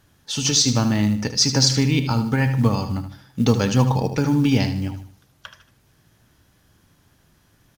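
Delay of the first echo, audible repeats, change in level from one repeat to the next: 76 ms, 3, -8.5 dB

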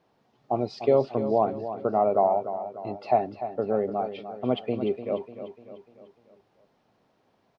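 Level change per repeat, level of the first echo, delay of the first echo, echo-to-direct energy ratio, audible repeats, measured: -6.0 dB, -11.0 dB, 297 ms, -10.0 dB, 4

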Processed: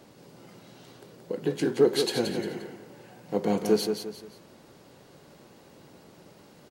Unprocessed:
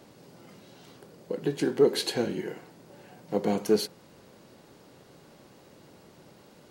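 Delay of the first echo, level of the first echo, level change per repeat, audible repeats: 175 ms, -6.5 dB, -9.0 dB, 3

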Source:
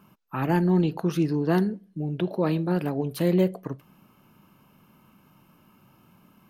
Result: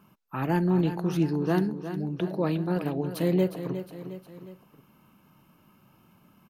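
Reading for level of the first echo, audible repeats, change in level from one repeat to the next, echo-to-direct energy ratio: -10.5 dB, 3, -5.5 dB, -9.0 dB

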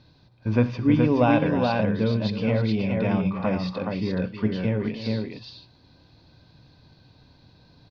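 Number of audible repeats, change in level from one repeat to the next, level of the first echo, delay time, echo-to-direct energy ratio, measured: 3, no regular repeats, -18.0 dB, 65 ms, -2.5 dB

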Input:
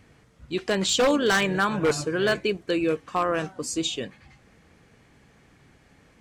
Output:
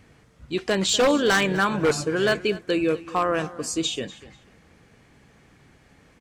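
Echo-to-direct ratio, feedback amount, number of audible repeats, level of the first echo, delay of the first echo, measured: -18.0 dB, 22%, 2, -18.0 dB, 245 ms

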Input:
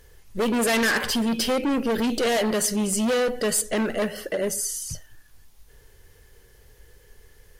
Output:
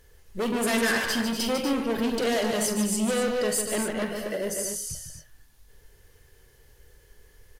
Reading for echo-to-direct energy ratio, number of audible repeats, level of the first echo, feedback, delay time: -3.0 dB, 3, -10.5 dB, no regular repeats, 43 ms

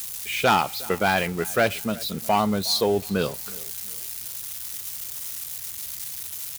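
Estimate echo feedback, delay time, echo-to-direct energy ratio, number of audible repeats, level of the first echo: 36%, 362 ms, -21.5 dB, 2, -22.0 dB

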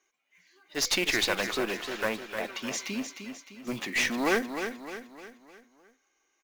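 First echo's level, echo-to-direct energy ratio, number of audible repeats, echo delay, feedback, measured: -8.0 dB, -7.0 dB, 5, 305 ms, 46%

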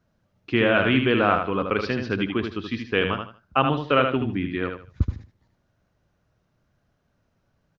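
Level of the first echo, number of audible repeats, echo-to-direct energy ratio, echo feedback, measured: -6.0 dB, 3, -5.5 dB, 25%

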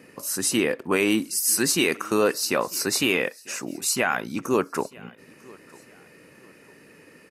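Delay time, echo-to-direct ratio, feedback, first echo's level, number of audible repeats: 948 ms, -23.5 dB, 37%, -24.0 dB, 2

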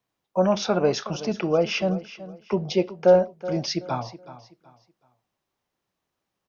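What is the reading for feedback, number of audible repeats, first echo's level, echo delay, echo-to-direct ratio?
29%, 2, -15.5 dB, 375 ms, -15.0 dB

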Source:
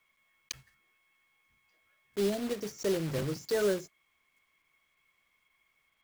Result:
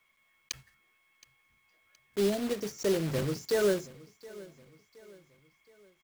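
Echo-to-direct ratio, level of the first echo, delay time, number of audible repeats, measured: -19.5 dB, -20.5 dB, 720 ms, 3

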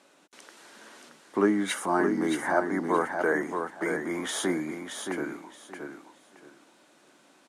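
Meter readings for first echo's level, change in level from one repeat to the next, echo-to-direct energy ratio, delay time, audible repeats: -6.0 dB, -13.0 dB, -6.0 dB, 624 ms, 3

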